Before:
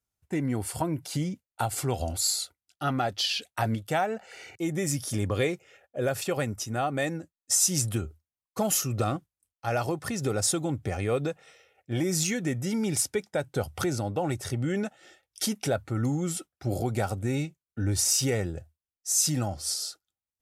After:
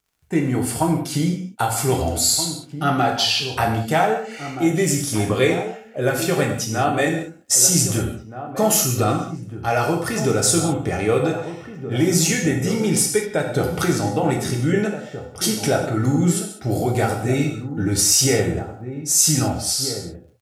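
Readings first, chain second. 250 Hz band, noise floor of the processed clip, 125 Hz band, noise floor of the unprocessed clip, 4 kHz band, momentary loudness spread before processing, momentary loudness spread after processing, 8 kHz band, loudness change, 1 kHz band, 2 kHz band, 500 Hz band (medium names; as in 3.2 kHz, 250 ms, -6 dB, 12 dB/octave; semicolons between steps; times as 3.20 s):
+9.5 dB, -41 dBFS, +8.0 dB, under -85 dBFS, +9.0 dB, 10 LU, 10 LU, +9.0 dB, +9.0 dB, +10.0 dB, +10.0 dB, +9.5 dB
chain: crackle 50 per s -59 dBFS; echo from a far wall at 270 m, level -10 dB; gated-style reverb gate 230 ms falling, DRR 0 dB; trim +6.5 dB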